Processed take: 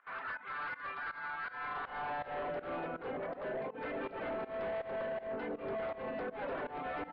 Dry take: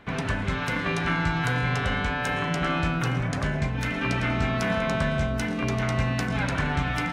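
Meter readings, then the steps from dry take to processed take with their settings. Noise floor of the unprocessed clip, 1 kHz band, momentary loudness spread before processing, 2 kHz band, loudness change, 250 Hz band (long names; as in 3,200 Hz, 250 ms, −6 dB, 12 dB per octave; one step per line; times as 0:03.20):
−30 dBFS, −9.5 dB, 2 LU, −14.0 dB, −13.5 dB, −18.5 dB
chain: reverb reduction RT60 0.75 s
high-pass filter 150 Hz 24 dB per octave
parametric band 2,900 Hz −9.5 dB 2.9 octaves
brickwall limiter −27.5 dBFS, peak gain reduction 9.5 dB
high-pass filter sweep 1,300 Hz → 490 Hz, 0:01.47–0:02.58
hard clipping −37 dBFS, distortion −9 dB
high-frequency loss of the air 490 metres
fake sidechain pumping 81 BPM, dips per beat 2, −18 dB, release 185 ms
downsampling to 11,025 Hz
level +3.5 dB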